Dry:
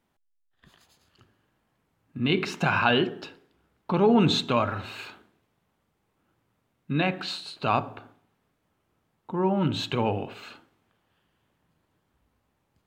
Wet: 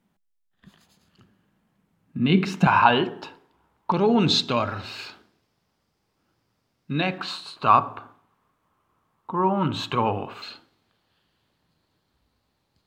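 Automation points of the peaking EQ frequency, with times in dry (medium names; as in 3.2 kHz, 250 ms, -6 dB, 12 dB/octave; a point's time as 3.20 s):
peaking EQ +13 dB 0.55 oct
190 Hz
from 2.67 s 940 Hz
from 3.92 s 5 kHz
from 7.18 s 1.1 kHz
from 10.42 s 4.3 kHz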